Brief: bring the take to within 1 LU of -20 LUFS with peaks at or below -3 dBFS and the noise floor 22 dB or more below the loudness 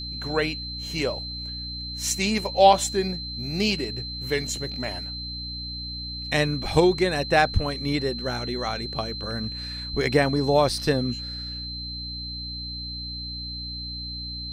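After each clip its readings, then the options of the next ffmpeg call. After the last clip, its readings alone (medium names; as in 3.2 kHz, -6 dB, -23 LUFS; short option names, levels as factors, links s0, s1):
hum 60 Hz; highest harmonic 300 Hz; hum level -36 dBFS; steady tone 4.1 kHz; tone level -33 dBFS; loudness -26.0 LUFS; peak level -4.0 dBFS; loudness target -20.0 LUFS
-> -af "bandreject=f=60:t=h:w=6,bandreject=f=120:t=h:w=6,bandreject=f=180:t=h:w=6,bandreject=f=240:t=h:w=6,bandreject=f=300:t=h:w=6"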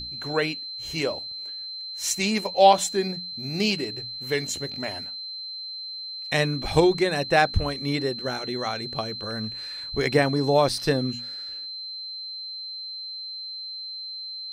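hum not found; steady tone 4.1 kHz; tone level -33 dBFS
-> -af "bandreject=f=4100:w=30"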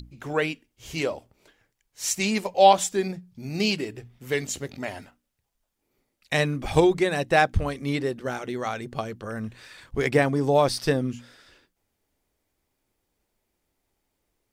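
steady tone not found; loudness -25.0 LUFS; peak level -4.5 dBFS; loudness target -20.0 LUFS
-> -af "volume=1.78,alimiter=limit=0.708:level=0:latency=1"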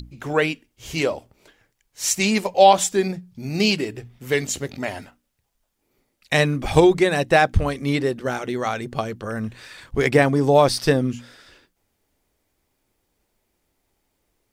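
loudness -20.5 LUFS; peak level -3.0 dBFS; noise floor -73 dBFS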